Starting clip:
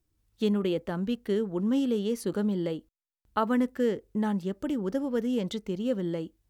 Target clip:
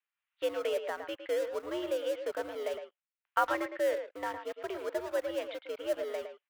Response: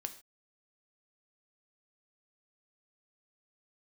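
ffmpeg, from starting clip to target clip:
-filter_complex "[0:a]highpass=f=350:t=q:w=0.5412,highpass=f=350:t=q:w=1.307,lowpass=f=2.7k:t=q:w=0.5176,lowpass=f=2.7k:t=q:w=0.7071,lowpass=f=2.7k:t=q:w=1.932,afreqshift=82,acrossover=split=1000[a][b];[a]aeval=exprs='sgn(val(0))*max(abs(val(0))-0.00447,0)':c=same[c];[c][b]amix=inputs=2:normalize=0,aemphasis=mode=production:type=75fm,asplit=2[d][e];[e]adelay=110,highpass=300,lowpass=3.4k,asoftclip=type=hard:threshold=-23.5dB,volume=-8dB[f];[d][f]amix=inputs=2:normalize=0"

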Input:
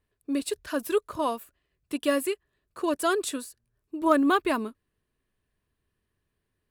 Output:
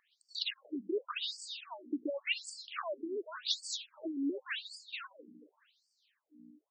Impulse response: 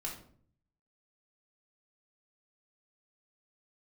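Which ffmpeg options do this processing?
-filter_complex "[0:a]lowpass=8.6k,highshelf=f=2.4k:g=11.5,asplit=2[a][b];[b]asplit=4[c][d][e][f];[c]adelay=230,afreqshift=-42,volume=-12dB[g];[d]adelay=460,afreqshift=-84,volume=-19.3dB[h];[e]adelay=690,afreqshift=-126,volume=-26.7dB[i];[f]adelay=920,afreqshift=-168,volume=-34dB[j];[g][h][i][j]amix=inputs=4:normalize=0[k];[a][k]amix=inputs=2:normalize=0,aeval=exprs='val(0)+0.00708*(sin(2*PI*60*n/s)+sin(2*PI*2*60*n/s)/2+sin(2*PI*3*60*n/s)/3+sin(2*PI*4*60*n/s)/4+sin(2*PI*5*60*n/s)/5)':c=same,acompressor=threshold=-31dB:ratio=6,equalizer=f=3.8k:w=0.71:g=12,asplit=2[l][m];[m]aecho=0:1:649:0.0668[n];[l][n]amix=inputs=2:normalize=0,afftfilt=real='re*between(b*sr/1024,280*pow(6400/280,0.5+0.5*sin(2*PI*0.89*pts/sr))/1.41,280*pow(6400/280,0.5+0.5*sin(2*PI*0.89*pts/sr))*1.41)':imag='im*between(b*sr/1024,280*pow(6400/280,0.5+0.5*sin(2*PI*0.89*pts/sr))/1.41,280*pow(6400/280,0.5+0.5*sin(2*PI*0.89*pts/sr))*1.41)':win_size=1024:overlap=0.75"

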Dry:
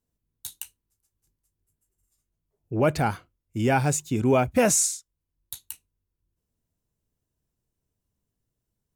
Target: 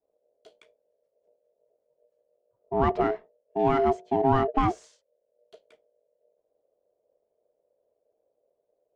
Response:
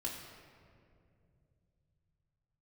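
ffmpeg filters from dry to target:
-filter_complex "[0:a]aemphasis=mode=reproduction:type=bsi,acrossover=split=1900[a][b];[b]asoftclip=type=tanh:threshold=-31.5dB[c];[a][c]amix=inputs=2:normalize=0,afreqshift=15,aeval=exprs='val(0)*sin(2*PI*540*n/s)':c=same,adynamicsmooth=sensitivity=1.5:basefreq=2.9k,volume=-2.5dB"

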